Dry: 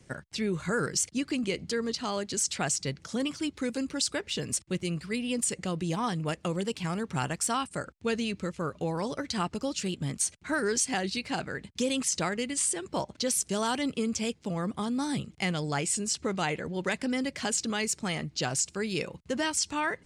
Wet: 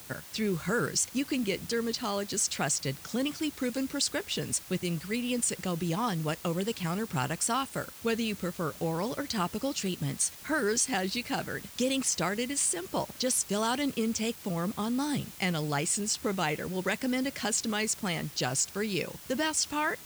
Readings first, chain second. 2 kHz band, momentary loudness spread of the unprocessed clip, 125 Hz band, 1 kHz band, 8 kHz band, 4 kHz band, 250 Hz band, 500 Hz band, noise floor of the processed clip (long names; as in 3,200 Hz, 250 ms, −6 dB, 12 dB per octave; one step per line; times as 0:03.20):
0.0 dB, 5 LU, 0.0 dB, 0.0 dB, 0.0 dB, 0.0 dB, 0.0 dB, 0.0 dB, −48 dBFS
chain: bit-depth reduction 8 bits, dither triangular